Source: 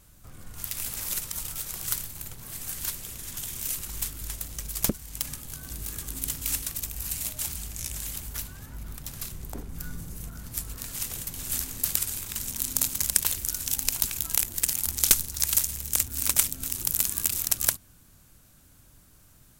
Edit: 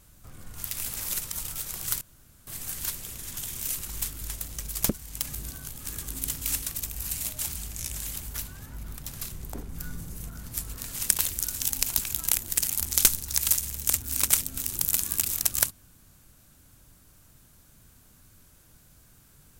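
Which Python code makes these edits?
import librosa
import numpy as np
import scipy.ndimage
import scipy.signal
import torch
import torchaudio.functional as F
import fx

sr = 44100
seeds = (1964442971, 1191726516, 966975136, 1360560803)

y = fx.edit(x, sr, fx.room_tone_fill(start_s=2.01, length_s=0.46),
    fx.reverse_span(start_s=5.33, length_s=0.55),
    fx.cut(start_s=11.09, length_s=2.06), tone=tone)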